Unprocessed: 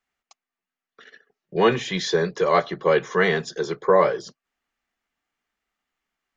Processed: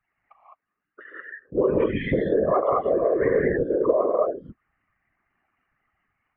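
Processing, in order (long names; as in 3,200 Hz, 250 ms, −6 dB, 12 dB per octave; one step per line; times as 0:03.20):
expanding power law on the bin magnitudes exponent 2.7
reverb whose tail is shaped and stops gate 230 ms rising, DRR −4 dB
downward compressor 5 to 1, threshold −24 dBFS, peak gain reduction 13.5 dB
Butterworth low-pass 2,800 Hz 72 dB per octave
random phases in short frames
level +4.5 dB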